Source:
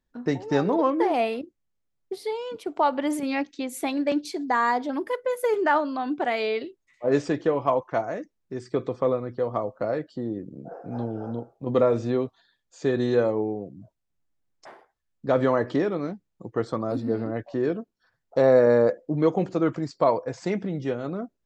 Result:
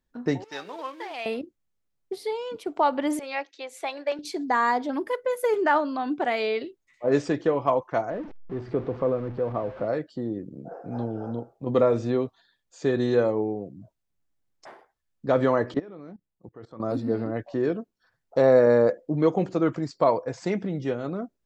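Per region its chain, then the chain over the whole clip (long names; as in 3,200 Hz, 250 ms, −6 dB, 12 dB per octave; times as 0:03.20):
0:00.44–0:01.26: mu-law and A-law mismatch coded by A + resonant band-pass 3,500 Hz, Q 0.83
0:03.19–0:04.19: high-pass filter 470 Hz 24 dB per octave + high-frequency loss of the air 68 metres
0:08.10–0:09.88: converter with a step at zero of −33 dBFS + head-to-tape spacing loss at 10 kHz 43 dB
0:15.74–0:16.80: low-pass filter 3,000 Hz 6 dB per octave + output level in coarse steps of 21 dB
whole clip: no processing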